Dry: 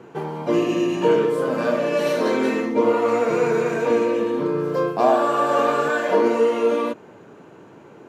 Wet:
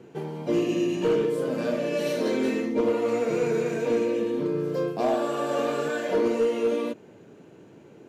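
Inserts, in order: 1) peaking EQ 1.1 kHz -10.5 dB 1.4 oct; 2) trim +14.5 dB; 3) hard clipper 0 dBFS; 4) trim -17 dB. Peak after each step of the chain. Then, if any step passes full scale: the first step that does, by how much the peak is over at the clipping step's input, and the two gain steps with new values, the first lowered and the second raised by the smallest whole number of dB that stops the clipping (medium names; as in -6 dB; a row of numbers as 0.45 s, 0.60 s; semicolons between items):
-8.5 dBFS, +6.0 dBFS, 0.0 dBFS, -17.0 dBFS; step 2, 6.0 dB; step 2 +8.5 dB, step 4 -11 dB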